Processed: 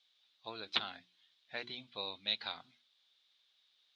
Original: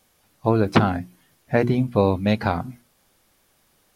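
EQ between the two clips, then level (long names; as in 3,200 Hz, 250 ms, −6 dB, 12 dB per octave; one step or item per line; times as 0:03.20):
resonant band-pass 3,700 Hz, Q 6.7
high-frequency loss of the air 97 metres
+6.5 dB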